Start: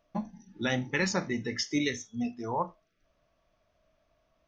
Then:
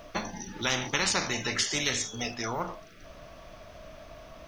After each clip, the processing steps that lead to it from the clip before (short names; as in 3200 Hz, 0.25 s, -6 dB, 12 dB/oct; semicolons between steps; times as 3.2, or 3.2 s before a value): spectral compressor 4:1; gain +5 dB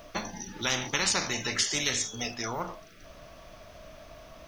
high shelf 5300 Hz +5.5 dB; gain -1.5 dB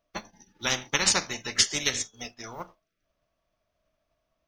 upward expander 2.5:1, over -48 dBFS; gain +7 dB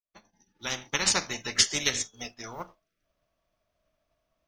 opening faded in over 1.34 s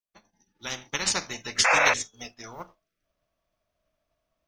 painted sound noise, 1.64–1.94, 480–2700 Hz -19 dBFS; gain -1.5 dB